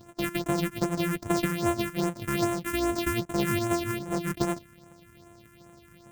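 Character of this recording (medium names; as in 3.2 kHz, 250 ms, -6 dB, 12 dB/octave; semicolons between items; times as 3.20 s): a buzz of ramps at a fixed pitch in blocks of 128 samples; phasing stages 4, 2.5 Hz, lowest notch 650–4700 Hz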